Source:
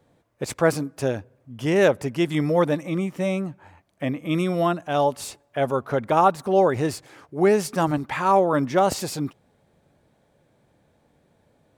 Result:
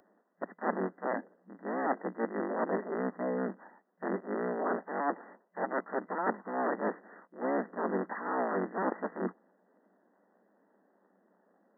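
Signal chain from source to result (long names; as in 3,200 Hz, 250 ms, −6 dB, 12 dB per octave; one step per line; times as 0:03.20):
sub-harmonics by changed cycles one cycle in 3, inverted
reversed playback
downward compressor 16 to 1, threshold −28 dBFS, peak gain reduction 16.5 dB
reversed playback
brick-wall band-pass 180–2,000 Hz
upward compression, threshold −50 dBFS
multiband upward and downward expander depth 40%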